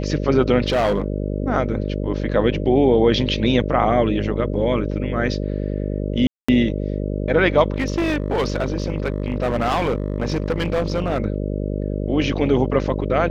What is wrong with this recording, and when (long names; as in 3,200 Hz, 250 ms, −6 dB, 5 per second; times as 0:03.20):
mains buzz 50 Hz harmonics 12 −24 dBFS
0:00.68–0:01.06: clipping −14.5 dBFS
0:06.27–0:06.49: drop-out 215 ms
0:07.72–0:11.18: clipping −16 dBFS